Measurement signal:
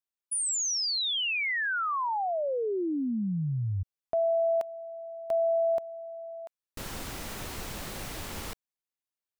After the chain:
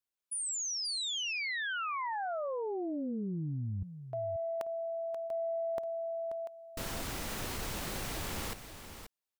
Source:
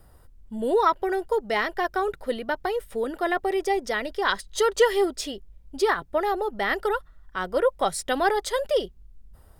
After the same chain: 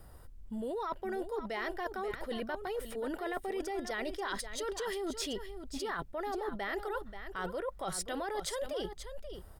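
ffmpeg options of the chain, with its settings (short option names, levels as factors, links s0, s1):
-af "alimiter=limit=0.126:level=0:latency=1,areverse,acompressor=threshold=0.0178:ratio=10:attack=8.8:release=77:knee=1:detection=peak,areverse,aecho=1:1:533:0.316"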